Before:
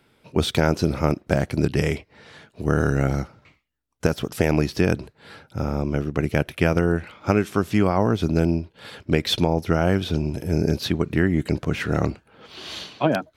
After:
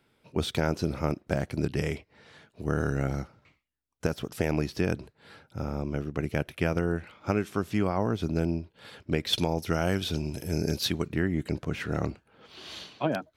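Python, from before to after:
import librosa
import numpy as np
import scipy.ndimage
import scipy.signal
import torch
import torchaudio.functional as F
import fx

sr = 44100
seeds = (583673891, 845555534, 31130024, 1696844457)

y = fx.high_shelf(x, sr, hz=2800.0, db=11.0, at=(9.33, 11.08))
y = y * librosa.db_to_amplitude(-7.5)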